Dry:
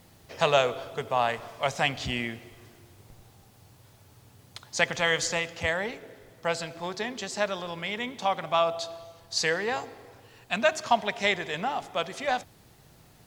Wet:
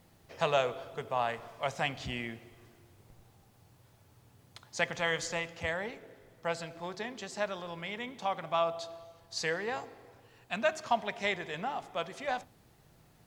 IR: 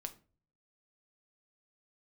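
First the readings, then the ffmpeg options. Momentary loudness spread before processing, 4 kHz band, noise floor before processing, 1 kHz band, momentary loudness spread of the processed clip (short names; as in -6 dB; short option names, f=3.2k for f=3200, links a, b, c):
11 LU, -8.5 dB, -57 dBFS, -6.0 dB, 11 LU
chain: -filter_complex "[0:a]asplit=2[a][b];[1:a]atrim=start_sample=2205,lowpass=3.2k[c];[b][c]afir=irnorm=-1:irlink=0,volume=-5dB[d];[a][d]amix=inputs=2:normalize=0,volume=-8.5dB"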